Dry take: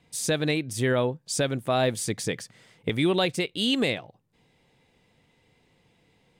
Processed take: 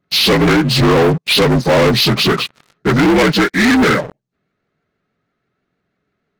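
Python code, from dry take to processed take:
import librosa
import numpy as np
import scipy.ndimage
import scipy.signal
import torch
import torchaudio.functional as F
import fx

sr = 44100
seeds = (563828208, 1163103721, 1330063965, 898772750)

y = fx.partial_stretch(x, sr, pct=79)
y = fx.peak_eq(y, sr, hz=2000.0, db=-2.0, octaves=2.7)
y = fx.leveller(y, sr, passes=5)
y = fx.vibrato_shape(y, sr, shape='saw_up', rate_hz=6.2, depth_cents=100.0)
y = F.gain(torch.from_numpy(y), 6.0).numpy()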